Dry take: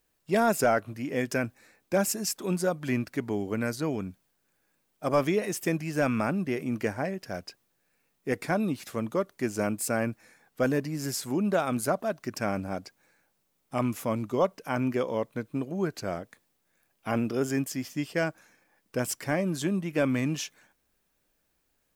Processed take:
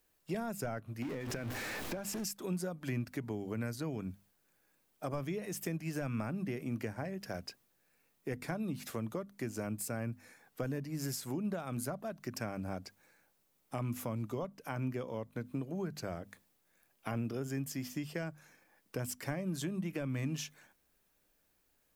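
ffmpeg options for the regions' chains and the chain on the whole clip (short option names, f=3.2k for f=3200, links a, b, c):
-filter_complex "[0:a]asettb=1/sr,asplit=3[a][b][c];[a]atrim=end=1.024[d];[b]atrim=start=1.02:end=2.24,asetpts=PTS-STARTPTS,afade=t=in:d=0.004:c=qsin,afade=t=out:st=1.216:d=0.004:c=qsin,aeval=exprs='val(0)+0.5*0.0316*sgn(val(0))':c=same,highshelf=f=6.3k:g=-11,acompressor=threshold=-30dB:ratio=6:attack=3.2:release=140:knee=1:detection=peak[e];[c]atrim=start=2.236[f];[d][e]acrossfade=d=0.004:c1=hsin:c2=qsin[g];[g][f]acrossfade=d=0.004:c1=qsin:c2=hsin,equalizer=f=13k:t=o:w=0.39:g=4,bandreject=f=50:t=h:w=6,bandreject=f=100:t=h:w=6,bandreject=f=150:t=h:w=6,bandreject=f=200:t=h:w=6,bandreject=f=250:t=h:w=6,acrossover=split=150[h][i];[i]acompressor=threshold=-36dB:ratio=10[j];[h][j]amix=inputs=2:normalize=0,volume=-1dB"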